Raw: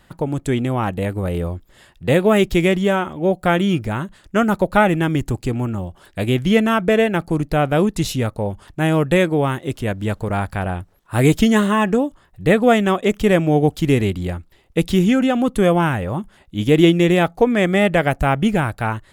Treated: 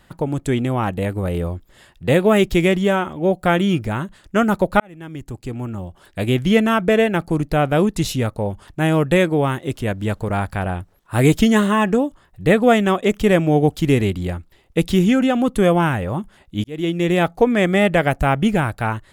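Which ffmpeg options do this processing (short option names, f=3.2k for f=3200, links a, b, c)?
-filter_complex "[0:a]asplit=3[a][b][c];[a]atrim=end=4.8,asetpts=PTS-STARTPTS,afade=t=out:st=4.796:d=0.004:c=hsin[d];[b]atrim=start=4.8:end=16.64,asetpts=PTS-STARTPTS,afade=t=in:d=1.51,afade=t=out:st=11.836:d=0.004:c=hsin[e];[c]atrim=start=16.64,asetpts=PTS-STARTPTS,afade=t=in:d=0.64[f];[d][e][f]concat=n=3:v=0:a=1"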